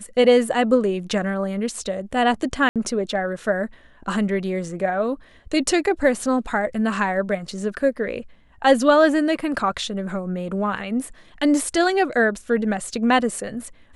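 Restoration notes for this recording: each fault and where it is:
0:02.69–0:02.76: drop-out 67 ms

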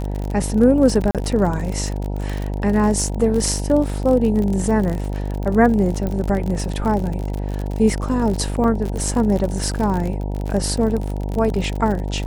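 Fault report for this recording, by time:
mains buzz 50 Hz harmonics 19 −24 dBFS
surface crackle 49 per second −23 dBFS
0:01.11–0:01.15: drop-out 37 ms
0:06.07: click −13 dBFS
0:08.64: drop-out 2.6 ms

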